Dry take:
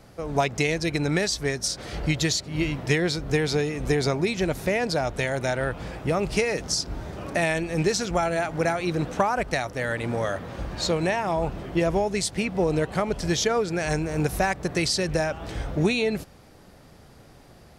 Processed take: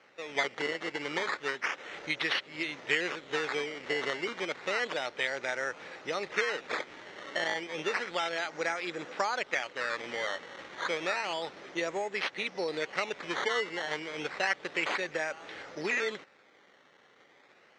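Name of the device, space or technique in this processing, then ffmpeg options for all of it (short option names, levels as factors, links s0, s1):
circuit-bent sampling toy: -af "acrusher=samples=12:mix=1:aa=0.000001:lfo=1:lforange=12:lforate=0.31,highpass=560,equalizer=f=690:t=q:w=4:g=-8,equalizer=f=1000:t=q:w=4:g=-4,equalizer=f=2000:t=q:w=4:g=5,equalizer=f=4800:t=q:w=4:g=-6,lowpass=f=5500:w=0.5412,lowpass=f=5500:w=1.3066,volume=0.708"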